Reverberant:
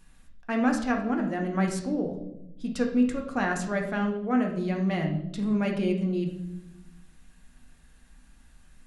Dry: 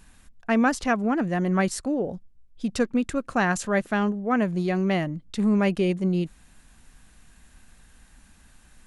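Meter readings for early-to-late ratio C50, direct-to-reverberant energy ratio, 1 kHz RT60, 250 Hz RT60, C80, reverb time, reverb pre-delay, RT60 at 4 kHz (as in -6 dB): 7.5 dB, 1.5 dB, 0.70 s, 1.4 s, 10.5 dB, 0.85 s, 4 ms, 0.65 s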